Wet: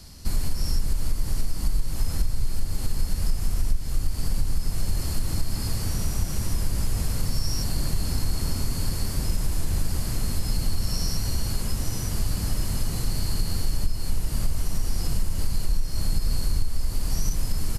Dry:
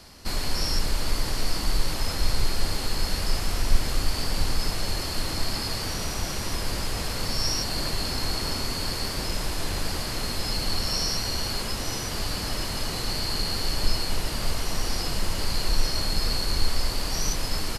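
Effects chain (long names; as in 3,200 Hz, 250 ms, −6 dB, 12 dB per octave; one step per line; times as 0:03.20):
bass and treble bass +14 dB, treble +10 dB
downward compressor 6 to 1, threshold −11 dBFS, peak gain reduction 14.5 dB
dynamic equaliser 4,300 Hz, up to −7 dB, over −41 dBFS, Q 1
level −6 dB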